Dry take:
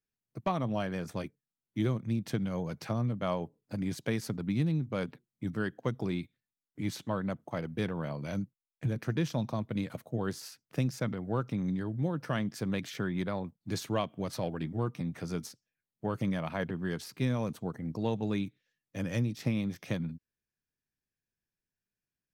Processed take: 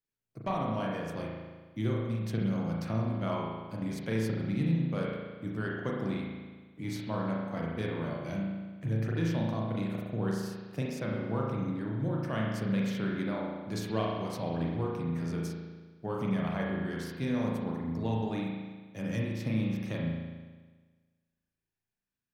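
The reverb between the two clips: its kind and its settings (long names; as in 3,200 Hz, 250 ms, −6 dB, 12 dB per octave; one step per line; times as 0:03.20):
spring reverb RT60 1.4 s, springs 36 ms, chirp 30 ms, DRR −3 dB
level −4 dB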